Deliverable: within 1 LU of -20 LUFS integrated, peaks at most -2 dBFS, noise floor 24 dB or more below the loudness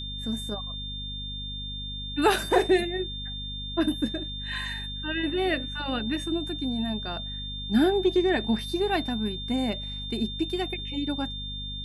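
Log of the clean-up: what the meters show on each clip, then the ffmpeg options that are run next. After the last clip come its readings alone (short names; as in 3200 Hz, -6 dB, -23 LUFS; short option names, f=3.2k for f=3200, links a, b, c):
hum 50 Hz; harmonics up to 250 Hz; hum level -36 dBFS; steady tone 3600 Hz; tone level -35 dBFS; loudness -28.0 LUFS; peak -9.5 dBFS; loudness target -20.0 LUFS
-> -af "bandreject=f=50:t=h:w=6,bandreject=f=100:t=h:w=6,bandreject=f=150:t=h:w=6,bandreject=f=200:t=h:w=6,bandreject=f=250:t=h:w=6"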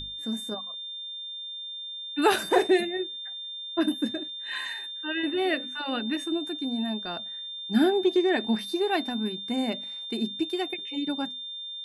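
hum none; steady tone 3600 Hz; tone level -35 dBFS
-> -af "bandreject=f=3.6k:w=30"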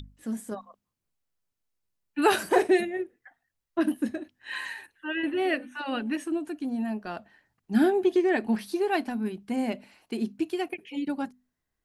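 steady tone none; loudness -28.5 LUFS; peak -9.5 dBFS; loudness target -20.0 LUFS
-> -af "volume=8.5dB,alimiter=limit=-2dB:level=0:latency=1"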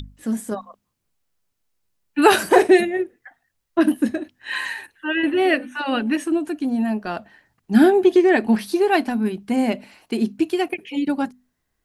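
loudness -20.0 LUFS; peak -2.0 dBFS; noise floor -75 dBFS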